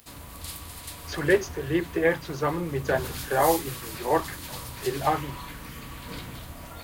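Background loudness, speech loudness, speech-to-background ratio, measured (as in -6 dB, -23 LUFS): -37.5 LUFS, -27.0 LUFS, 10.5 dB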